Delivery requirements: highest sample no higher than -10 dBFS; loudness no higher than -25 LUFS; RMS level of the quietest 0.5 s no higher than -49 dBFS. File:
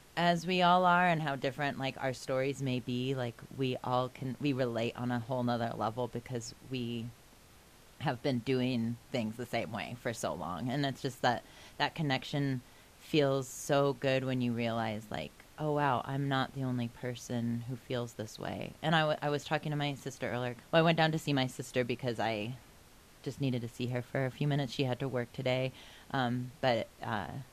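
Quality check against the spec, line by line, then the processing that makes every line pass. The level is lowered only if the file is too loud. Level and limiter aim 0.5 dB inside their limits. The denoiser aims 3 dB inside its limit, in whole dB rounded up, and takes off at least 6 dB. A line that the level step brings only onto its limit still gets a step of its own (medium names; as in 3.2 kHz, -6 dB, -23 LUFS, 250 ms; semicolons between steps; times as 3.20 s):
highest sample -13.5 dBFS: pass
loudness -34.0 LUFS: pass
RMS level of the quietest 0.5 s -59 dBFS: pass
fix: none needed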